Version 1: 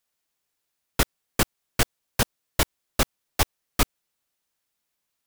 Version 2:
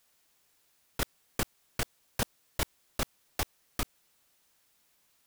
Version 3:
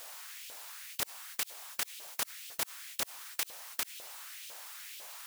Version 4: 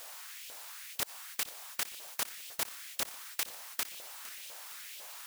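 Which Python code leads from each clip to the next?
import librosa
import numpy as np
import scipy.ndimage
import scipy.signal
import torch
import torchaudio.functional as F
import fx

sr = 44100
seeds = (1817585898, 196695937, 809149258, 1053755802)

y1 = fx.over_compress(x, sr, threshold_db=-29.0, ratio=-1.0)
y2 = fx.filter_lfo_highpass(y1, sr, shape='saw_up', hz=2.0, low_hz=510.0, high_hz=3200.0, q=2.5)
y2 = fx.spectral_comp(y2, sr, ratio=4.0)
y3 = fx.echo_feedback(y2, sr, ms=459, feedback_pct=52, wet_db=-15.5)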